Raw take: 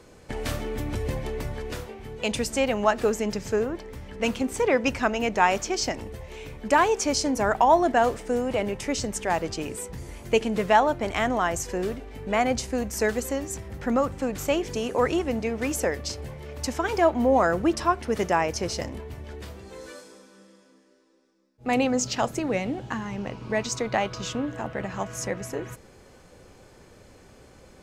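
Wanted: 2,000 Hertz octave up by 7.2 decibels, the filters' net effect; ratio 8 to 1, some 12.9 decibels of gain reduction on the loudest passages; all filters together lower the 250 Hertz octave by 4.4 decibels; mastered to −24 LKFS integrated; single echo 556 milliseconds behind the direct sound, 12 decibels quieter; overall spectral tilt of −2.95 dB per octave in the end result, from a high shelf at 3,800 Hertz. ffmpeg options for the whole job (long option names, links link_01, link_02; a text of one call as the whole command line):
ffmpeg -i in.wav -af "equalizer=frequency=250:width_type=o:gain=-5.5,equalizer=frequency=2000:width_type=o:gain=8,highshelf=frequency=3800:gain=4.5,acompressor=threshold=-26dB:ratio=8,aecho=1:1:556:0.251,volume=7dB" out.wav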